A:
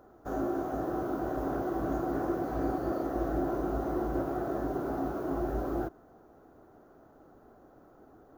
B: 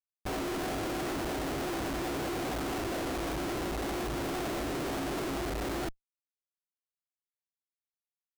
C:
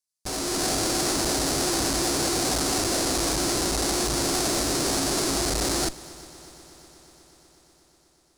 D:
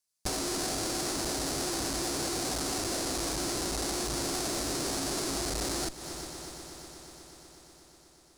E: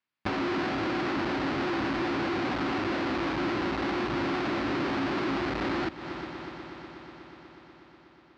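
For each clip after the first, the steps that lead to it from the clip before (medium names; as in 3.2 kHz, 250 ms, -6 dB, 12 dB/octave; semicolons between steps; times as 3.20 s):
Schmitt trigger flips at -44 dBFS
high-order bell 6.8 kHz +14 dB; level rider gain up to 6.5 dB; multi-head delay 122 ms, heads second and third, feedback 71%, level -22 dB
compression 6:1, threshold -33 dBFS, peak gain reduction 11.5 dB; trim +3.5 dB
cabinet simulation 120–2800 Hz, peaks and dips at 150 Hz -4 dB, 450 Hz -9 dB, 670 Hz -8 dB; trim +8.5 dB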